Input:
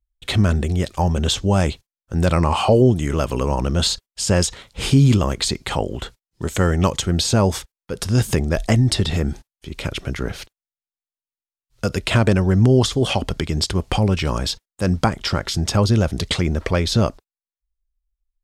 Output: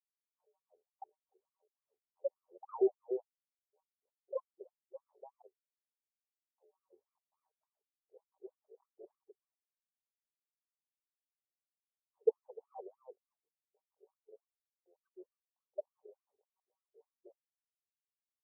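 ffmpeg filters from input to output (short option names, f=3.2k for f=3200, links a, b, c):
-filter_complex "[0:a]afftfilt=real='re*gte(hypot(re,im),1.12)':imag='im*gte(hypot(re,im),1.12)':win_size=1024:overlap=0.75,acrossover=split=270|6000[a][b][c];[a]adelay=300[d];[c]adelay=330[e];[d][b][e]amix=inputs=3:normalize=0,aeval=exprs='0.794*(cos(1*acos(clip(val(0)/0.794,-1,1)))-cos(1*PI/2))+0.0708*(cos(6*acos(clip(val(0)/0.794,-1,1)))-cos(6*PI/2))':c=same,acompressor=threshold=-19dB:ratio=4,asuperstop=centerf=1900:order=8:qfactor=0.7,equalizer=f=670:t=o:w=0.8:g=-14,dynaudnorm=f=490:g=9:m=7dB,aemphasis=mode=production:type=bsi,afftfilt=real='re*between(b*sr/1024,500*pow(1700/500,0.5+0.5*sin(2*PI*3.4*pts/sr))/1.41,500*pow(1700/500,0.5+0.5*sin(2*PI*3.4*pts/sr))*1.41)':imag='im*between(b*sr/1024,500*pow(1700/500,0.5+0.5*sin(2*PI*3.4*pts/sr))/1.41,500*pow(1700/500,0.5+0.5*sin(2*PI*3.4*pts/sr))*1.41)':win_size=1024:overlap=0.75,volume=1dB"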